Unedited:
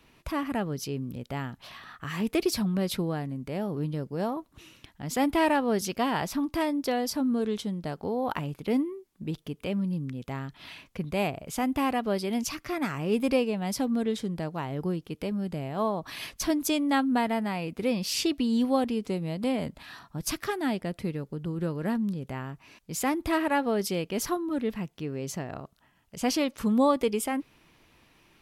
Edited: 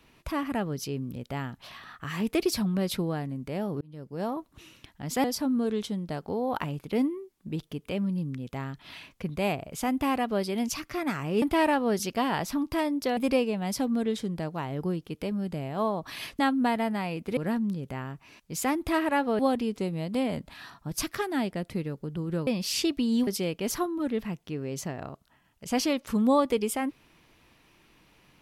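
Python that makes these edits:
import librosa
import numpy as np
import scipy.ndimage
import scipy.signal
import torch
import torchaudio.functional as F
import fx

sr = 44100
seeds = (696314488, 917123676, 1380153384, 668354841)

y = fx.edit(x, sr, fx.fade_in_span(start_s=3.81, length_s=0.53),
    fx.move(start_s=5.24, length_s=1.75, to_s=13.17),
    fx.cut(start_s=16.39, length_s=0.51),
    fx.swap(start_s=17.88, length_s=0.8, other_s=21.76, other_length_s=2.02), tone=tone)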